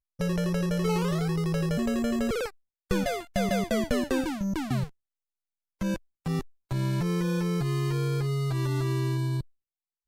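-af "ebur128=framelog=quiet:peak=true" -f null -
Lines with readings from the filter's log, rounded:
Integrated loudness:
  I:         -28.8 LUFS
  Threshold: -38.9 LUFS
Loudness range:
  LRA:         3.1 LU
  Threshold: -49.5 LUFS
  LRA low:   -31.5 LUFS
  LRA high:  -28.4 LUFS
True peak:
  Peak:      -12.7 dBFS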